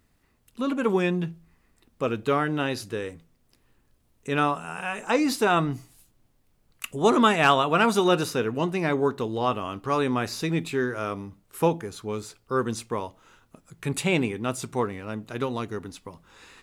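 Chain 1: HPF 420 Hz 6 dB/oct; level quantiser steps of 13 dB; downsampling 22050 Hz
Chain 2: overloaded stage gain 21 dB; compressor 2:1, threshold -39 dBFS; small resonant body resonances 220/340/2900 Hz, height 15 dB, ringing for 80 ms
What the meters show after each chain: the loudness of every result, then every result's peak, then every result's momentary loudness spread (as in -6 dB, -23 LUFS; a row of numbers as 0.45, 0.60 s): -32.5, -30.0 LUFS; -12.0, -15.5 dBFS; 16, 14 LU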